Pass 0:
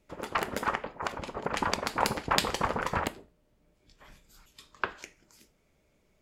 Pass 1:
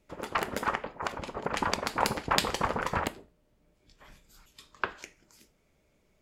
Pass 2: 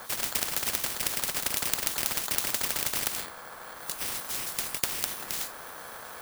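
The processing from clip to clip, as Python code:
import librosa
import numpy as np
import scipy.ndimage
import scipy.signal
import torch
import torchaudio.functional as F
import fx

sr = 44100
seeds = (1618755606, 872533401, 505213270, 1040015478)

y1 = x
y2 = fx.bit_reversed(y1, sr, seeds[0], block=16)
y2 = y2 * np.sin(2.0 * np.pi * 1100.0 * np.arange(len(y2)) / sr)
y2 = fx.spectral_comp(y2, sr, ratio=10.0)
y2 = F.gain(torch.from_numpy(y2), 1.5).numpy()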